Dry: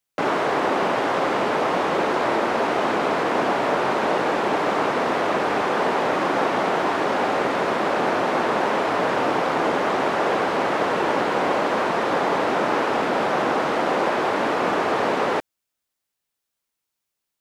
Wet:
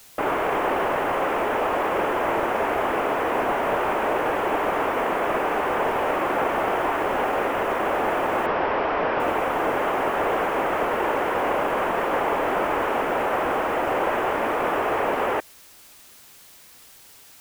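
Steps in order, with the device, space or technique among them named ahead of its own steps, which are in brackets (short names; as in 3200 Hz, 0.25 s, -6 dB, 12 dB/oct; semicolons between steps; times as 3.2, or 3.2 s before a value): army field radio (BPF 310–3300 Hz; CVSD 16 kbps; white noise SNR 25 dB); 8.46–9.2 steep low-pass 5600 Hz 72 dB/oct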